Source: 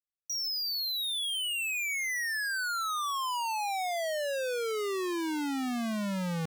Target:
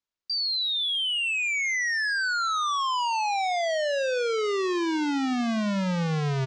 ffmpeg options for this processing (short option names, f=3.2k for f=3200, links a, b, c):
-filter_complex "[0:a]lowpass=f=8k:w=0.5412,lowpass=f=8k:w=1.3066,asetrate=36028,aresample=44100,atempo=1.22405,asplit=2[a][b];[b]aecho=0:1:81|162|243|324:0.106|0.0498|0.0234|0.011[c];[a][c]amix=inputs=2:normalize=0,volume=6dB"